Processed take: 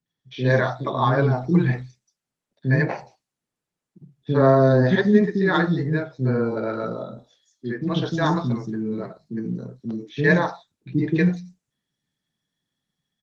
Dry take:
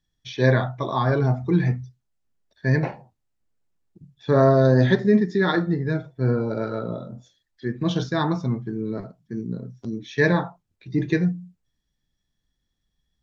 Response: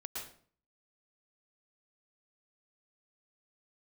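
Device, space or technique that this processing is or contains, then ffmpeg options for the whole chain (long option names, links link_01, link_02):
video call: -filter_complex "[0:a]asettb=1/sr,asplit=3[link_01][link_02][link_03];[link_01]atrim=end=6.504[link_04];[link_02]atrim=start=6.5:end=7.93,asetpts=PTS-STARTPTS,afade=type=in:duration=0.004:curve=qsin,afade=type=out:start_time=1.426:duration=0.004:curve=qsin,equalizer=frequency=160:width_type=o:width=0.63:gain=-6[link_05];[link_03]atrim=start=7.926[link_06];[link_04][link_05]acrossfade=duration=0.004:curve1=hsin:curve2=qsin[link_07];[link_07][link_06]acrossfade=duration=0.004:curve1=qsin:curve2=hsin,highpass=frequency=130:width=0.5412,highpass=frequency=130:width=1.3066,acrossover=split=350|5200[link_08][link_09][link_10];[link_09]adelay=60[link_11];[link_10]adelay=240[link_12];[link_08][link_11][link_12]amix=inputs=3:normalize=0,dynaudnorm=framelen=110:gausssize=9:maxgain=3.5dB" -ar 48000 -c:a libopus -b:a 20k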